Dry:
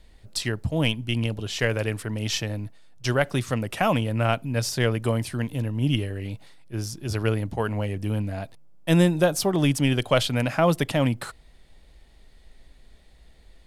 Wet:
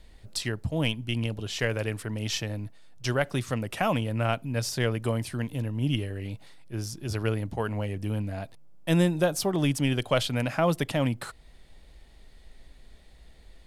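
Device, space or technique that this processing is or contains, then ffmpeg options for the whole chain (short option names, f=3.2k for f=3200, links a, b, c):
parallel compression: -filter_complex "[0:a]asplit=2[a][b];[b]acompressor=threshold=-40dB:ratio=6,volume=-2dB[c];[a][c]amix=inputs=2:normalize=0,volume=-4.5dB"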